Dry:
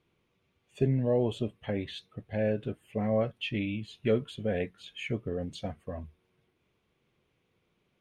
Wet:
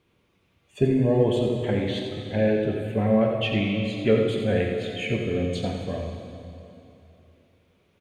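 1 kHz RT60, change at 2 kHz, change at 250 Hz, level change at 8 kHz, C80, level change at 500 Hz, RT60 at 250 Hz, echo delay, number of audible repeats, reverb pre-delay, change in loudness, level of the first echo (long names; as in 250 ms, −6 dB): 2.9 s, +8.5 dB, +8.5 dB, can't be measured, 2.5 dB, +8.0 dB, 3.2 s, 87 ms, 1, 3 ms, +7.5 dB, −7.5 dB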